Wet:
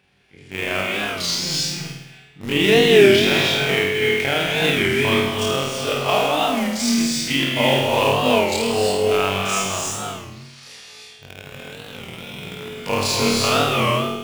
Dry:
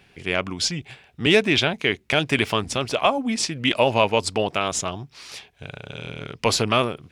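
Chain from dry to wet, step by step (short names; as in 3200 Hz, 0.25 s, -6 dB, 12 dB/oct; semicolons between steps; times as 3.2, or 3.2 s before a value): HPF 40 Hz 12 dB/oct; in parallel at -4 dB: bit-crush 4-bit; on the sum: granular stretch 2×, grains 84 ms; on a send: flutter echo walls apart 8.8 m, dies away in 0.83 s; on the sum: non-linear reverb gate 0.37 s rising, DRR -0.5 dB; record warp 33 1/3 rpm, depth 160 cents; gain -6 dB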